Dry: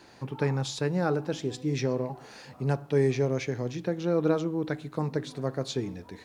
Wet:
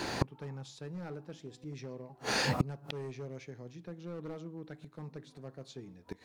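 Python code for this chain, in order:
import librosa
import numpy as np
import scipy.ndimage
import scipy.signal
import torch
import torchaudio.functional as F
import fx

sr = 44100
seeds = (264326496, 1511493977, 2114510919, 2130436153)

y = fx.dynamic_eq(x, sr, hz=170.0, q=3.3, threshold_db=-44.0, ratio=4.0, max_db=5)
y = np.clip(y, -10.0 ** (-20.5 / 20.0), 10.0 ** (-20.5 / 20.0))
y = fx.gate_flip(y, sr, shuts_db=-32.0, range_db=-33)
y = y * librosa.db_to_amplitude(17.0)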